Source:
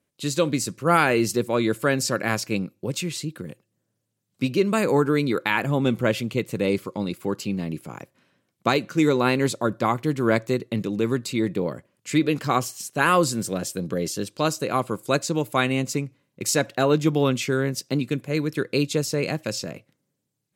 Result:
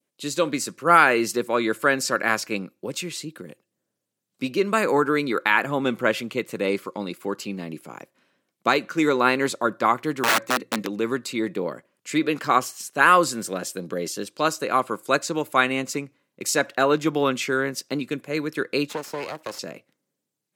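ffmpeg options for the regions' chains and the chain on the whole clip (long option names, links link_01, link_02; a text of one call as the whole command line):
ffmpeg -i in.wav -filter_complex "[0:a]asettb=1/sr,asplit=3[link_01][link_02][link_03];[link_01]atrim=end=10.234[link_04];[link_02]atrim=start=10.23:end=10.87,asetpts=PTS-STARTPTS,afade=type=in:duration=0.004:curve=qsin,afade=type=out:start_time=0.636:duration=0.004:curve=qsin,bandreject=frequency=60:width_type=h:width=6,bandreject=frequency=120:width_type=h:width=6,bandreject=frequency=180:width_type=h:width=6,aecho=1:1:3.8:0.64,atrim=end_sample=28224,aeval=exprs='(mod(6.31*val(0)+1,2)-1)/6.31':channel_layout=same[link_05];[link_03]atrim=start=10.866[link_06];[link_04][link_05]acrossfade=duration=0.004:curve1=hsin:curve2=qsin[link_07];[link_07][link_06]acrossfade=duration=0.004:curve1=qsin:curve2=hsin,asettb=1/sr,asplit=3[link_08][link_09][link_10];[link_08]atrim=end=18.894[link_11];[link_09]atrim=start=18.89:end=19.59,asetpts=PTS-STARTPTS,afade=type=in:duration=0.004:curve=qsin,afade=type=out:start_time=0.696:duration=0.004:curve=qsin,equalizer=frequency=890:width_type=o:width=2.3:gain=10,acrossover=split=240|700|2400[link_12][link_13][link_14][link_15];[link_12]acompressor=threshold=-40dB:ratio=3[link_16];[link_13]acompressor=threshold=-26dB:ratio=3[link_17];[link_14]acompressor=threshold=-41dB:ratio=3[link_18];[link_15]acompressor=threshold=-35dB:ratio=3[link_19];[link_16][link_17][link_18][link_19]amix=inputs=4:normalize=0,aeval=exprs='max(val(0),0)':channel_layout=same[link_20];[link_10]atrim=start=19.586[link_21];[link_11][link_20]acrossfade=duration=0.004:curve1=hsin:curve2=qsin[link_22];[link_22][link_21]acrossfade=duration=0.004:curve1=qsin:curve2=hsin,highpass=230,adynamicequalizer=threshold=0.0158:dfrequency=1400:dqfactor=0.98:tfrequency=1400:tqfactor=0.98:attack=5:release=100:ratio=0.375:range=3.5:mode=boostabove:tftype=bell,volume=-1dB" out.wav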